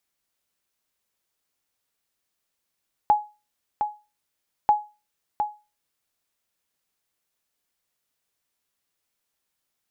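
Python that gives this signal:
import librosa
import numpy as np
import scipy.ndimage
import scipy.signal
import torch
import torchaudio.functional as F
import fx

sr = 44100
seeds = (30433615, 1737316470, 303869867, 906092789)

y = fx.sonar_ping(sr, hz=839.0, decay_s=0.29, every_s=1.59, pings=2, echo_s=0.71, echo_db=-7.0, level_db=-10.0)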